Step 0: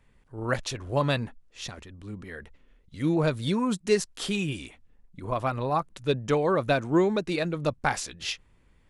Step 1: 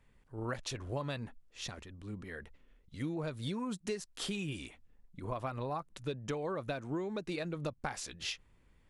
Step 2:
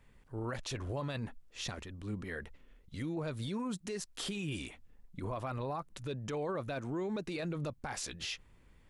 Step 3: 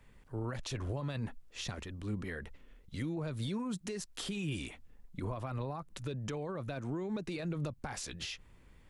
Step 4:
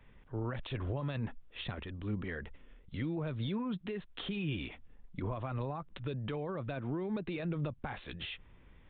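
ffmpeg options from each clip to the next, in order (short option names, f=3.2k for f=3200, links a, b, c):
-af "acompressor=threshold=-29dB:ratio=12,volume=-4.5dB"
-af "alimiter=level_in=10dB:limit=-24dB:level=0:latency=1:release=11,volume=-10dB,volume=4dB"
-filter_complex "[0:a]acrossover=split=220[a][b];[b]acompressor=threshold=-41dB:ratio=6[c];[a][c]amix=inputs=2:normalize=0,volume=2.5dB"
-af "aresample=8000,aresample=44100,volume=1dB"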